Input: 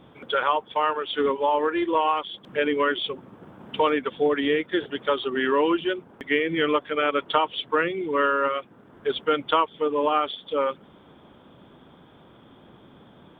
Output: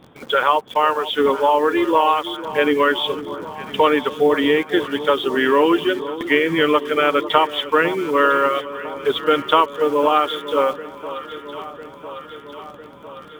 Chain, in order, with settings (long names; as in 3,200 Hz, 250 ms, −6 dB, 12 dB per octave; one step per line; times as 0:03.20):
in parallel at −4 dB: bit reduction 7 bits
on the sum: delay that swaps between a low-pass and a high-pass 501 ms, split 1,100 Hz, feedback 79%, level −13 dB
level +2 dB